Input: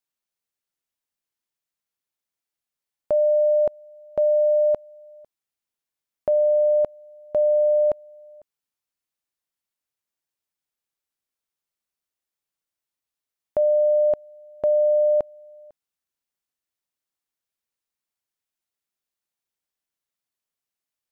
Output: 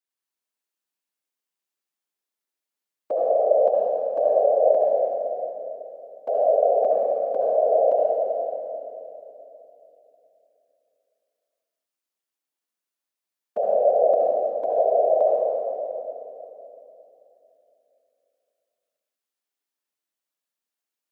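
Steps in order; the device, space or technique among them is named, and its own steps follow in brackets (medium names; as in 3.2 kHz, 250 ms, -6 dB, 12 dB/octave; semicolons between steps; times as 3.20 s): whispering ghost (whisper effect; high-pass 220 Hz 24 dB/octave; reverberation RT60 3.1 s, pre-delay 63 ms, DRR -4 dB); trim -5 dB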